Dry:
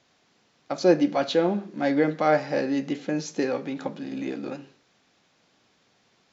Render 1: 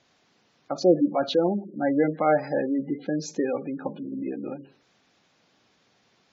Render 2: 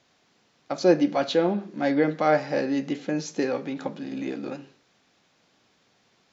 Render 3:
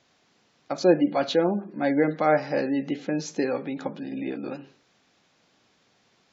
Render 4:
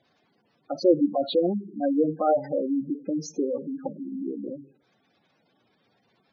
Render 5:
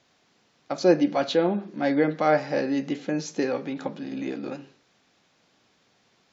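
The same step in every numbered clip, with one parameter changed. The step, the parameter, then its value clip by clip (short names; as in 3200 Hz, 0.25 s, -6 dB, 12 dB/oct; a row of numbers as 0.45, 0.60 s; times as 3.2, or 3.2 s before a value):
spectral gate, under each frame's peak: -20, -60, -35, -10, -50 dB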